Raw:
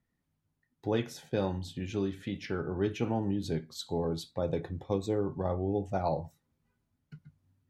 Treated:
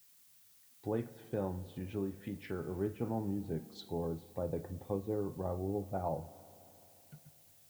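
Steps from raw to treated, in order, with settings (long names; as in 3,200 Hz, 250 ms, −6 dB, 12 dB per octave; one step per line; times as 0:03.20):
treble cut that deepens with the level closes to 1,300 Hz, closed at −31 dBFS
background noise blue −58 dBFS
spring reverb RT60 3.4 s, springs 35/53 ms, chirp 60 ms, DRR 16.5 dB
level −5.5 dB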